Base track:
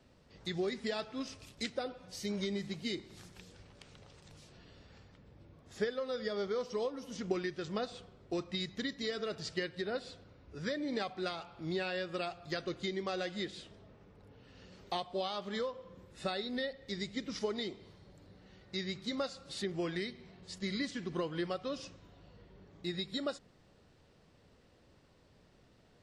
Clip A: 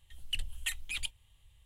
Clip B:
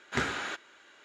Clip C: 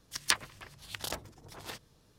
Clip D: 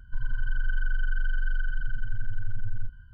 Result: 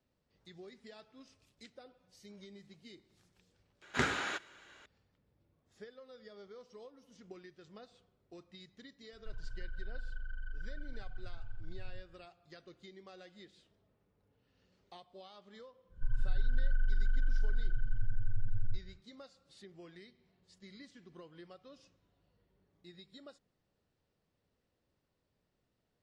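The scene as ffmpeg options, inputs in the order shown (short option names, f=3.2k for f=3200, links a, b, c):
-filter_complex "[4:a]asplit=2[a][b];[0:a]volume=-17dB[c];[a]tremolo=f=29:d=0.519[d];[b]tiltshelf=f=630:g=5[e];[2:a]atrim=end=1.04,asetpts=PTS-STARTPTS,volume=-1.5dB,afade=t=in:d=0.004:c=hsin,afade=t=out:st=1.036:d=0.004:c=hsin,adelay=3820[f];[d]atrim=end=3.13,asetpts=PTS-STARTPTS,volume=-13.5dB,afade=t=in:d=0.004:c=hsin,afade=t=out:st=3.126:d=0.004:c=hsin,adelay=9130[g];[e]atrim=end=3.13,asetpts=PTS-STARTPTS,volume=-8.5dB,afade=t=in:d=0.1,afade=t=out:st=3.03:d=0.1,adelay=15890[h];[c][f][g][h]amix=inputs=4:normalize=0"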